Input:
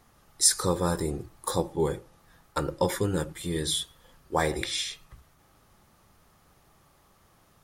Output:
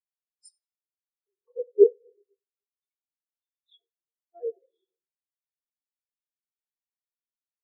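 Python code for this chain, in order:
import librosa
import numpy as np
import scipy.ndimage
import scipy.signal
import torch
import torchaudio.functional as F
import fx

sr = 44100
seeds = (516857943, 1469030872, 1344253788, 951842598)

y = fx.sample_sort(x, sr, block=128, at=(3.79, 4.4))
y = fx.low_shelf(y, sr, hz=220.0, db=-6.5)
y = fx.echo_split(y, sr, split_hz=450.0, low_ms=256, high_ms=88, feedback_pct=52, wet_db=-9.5)
y = fx.filter_lfo_highpass(y, sr, shape='square', hz=0.4, low_hz=430.0, high_hz=2600.0, q=2.9)
y = fx.room_shoebox(y, sr, seeds[0], volume_m3=3100.0, walls='mixed', distance_m=1.6)
y = fx.spectral_expand(y, sr, expansion=4.0)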